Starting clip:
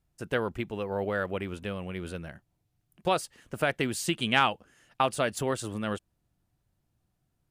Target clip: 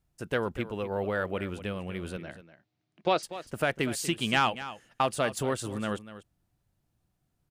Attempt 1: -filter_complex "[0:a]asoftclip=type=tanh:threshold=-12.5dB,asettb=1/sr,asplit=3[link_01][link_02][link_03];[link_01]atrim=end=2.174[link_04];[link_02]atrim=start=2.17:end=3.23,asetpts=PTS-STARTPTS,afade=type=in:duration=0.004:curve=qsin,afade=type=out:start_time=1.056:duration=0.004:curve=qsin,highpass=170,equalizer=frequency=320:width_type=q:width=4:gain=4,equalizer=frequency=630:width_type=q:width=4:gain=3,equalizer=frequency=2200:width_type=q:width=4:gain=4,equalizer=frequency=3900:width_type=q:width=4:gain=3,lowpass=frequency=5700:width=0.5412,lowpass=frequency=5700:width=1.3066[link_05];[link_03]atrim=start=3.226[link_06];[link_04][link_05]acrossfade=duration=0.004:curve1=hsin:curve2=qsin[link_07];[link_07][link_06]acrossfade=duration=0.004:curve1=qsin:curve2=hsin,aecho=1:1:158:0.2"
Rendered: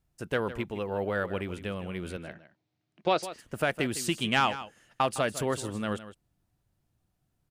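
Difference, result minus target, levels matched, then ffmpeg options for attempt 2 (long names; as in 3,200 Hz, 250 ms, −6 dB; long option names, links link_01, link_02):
echo 84 ms early
-filter_complex "[0:a]asoftclip=type=tanh:threshold=-12.5dB,asettb=1/sr,asplit=3[link_01][link_02][link_03];[link_01]atrim=end=2.174[link_04];[link_02]atrim=start=2.17:end=3.23,asetpts=PTS-STARTPTS,afade=type=in:duration=0.004:curve=qsin,afade=type=out:start_time=1.056:duration=0.004:curve=qsin,highpass=170,equalizer=frequency=320:width_type=q:width=4:gain=4,equalizer=frequency=630:width_type=q:width=4:gain=3,equalizer=frequency=2200:width_type=q:width=4:gain=4,equalizer=frequency=3900:width_type=q:width=4:gain=3,lowpass=frequency=5700:width=0.5412,lowpass=frequency=5700:width=1.3066[link_05];[link_03]atrim=start=3.226[link_06];[link_04][link_05]acrossfade=duration=0.004:curve1=hsin:curve2=qsin[link_07];[link_07][link_06]acrossfade=duration=0.004:curve1=qsin:curve2=hsin,aecho=1:1:242:0.2"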